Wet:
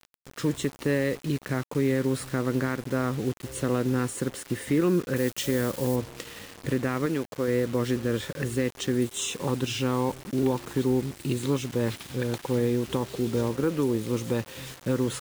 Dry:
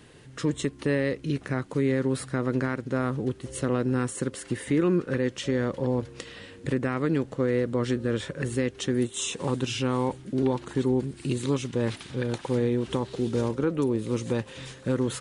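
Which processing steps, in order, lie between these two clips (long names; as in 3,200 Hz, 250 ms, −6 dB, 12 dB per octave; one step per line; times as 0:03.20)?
0:07.06–0:07.48: low-shelf EQ 230 Hz −8 dB
bit reduction 7 bits
0:05.16–0:05.96: high-shelf EQ 7,000 Hz +12 dB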